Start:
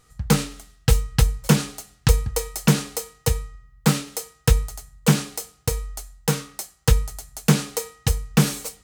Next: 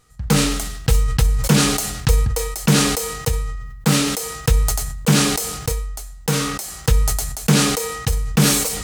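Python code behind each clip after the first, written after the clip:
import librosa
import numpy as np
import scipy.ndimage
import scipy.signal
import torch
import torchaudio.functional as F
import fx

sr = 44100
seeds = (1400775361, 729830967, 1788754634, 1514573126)

y = fx.sustainer(x, sr, db_per_s=39.0)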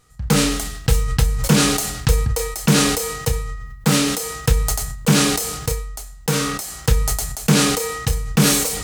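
y = fx.doubler(x, sr, ms=31.0, db=-11.0)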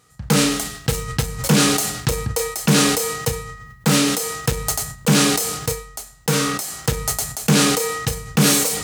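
y = 10.0 ** (-8.5 / 20.0) * np.tanh(x / 10.0 ** (-8.5 / 20.0))
y = scipy.signal.sosfilt(scipy.signal.butter(2, 110.0, 'highpass', fs=sr, output='sos'), y)
y = y * librosa.db_to_amplitude(2.0)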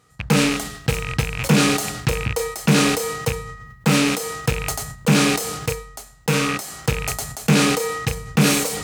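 y = fx.rattle_buzz(x, sr, strikes_db=-26.0, level_db=-12.0)
y = fx.high_shelf(y, sr, hz=3900.0, db=-6.5)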